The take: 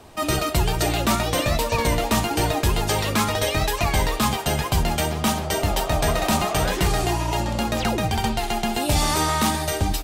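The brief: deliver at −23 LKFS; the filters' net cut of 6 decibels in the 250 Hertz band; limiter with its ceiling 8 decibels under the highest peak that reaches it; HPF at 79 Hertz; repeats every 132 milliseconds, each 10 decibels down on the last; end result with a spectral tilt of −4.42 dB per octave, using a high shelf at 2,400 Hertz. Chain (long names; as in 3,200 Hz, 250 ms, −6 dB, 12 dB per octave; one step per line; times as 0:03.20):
high-pass filter 79 Hz
parametric band 250 Hz −8 dB
high-shelf EQ 2,400 Hz −7.5 dB
brickwall limiter −19 dBFS
repeating echo 132 ms, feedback 32%, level −10 dB
level +5.5 dB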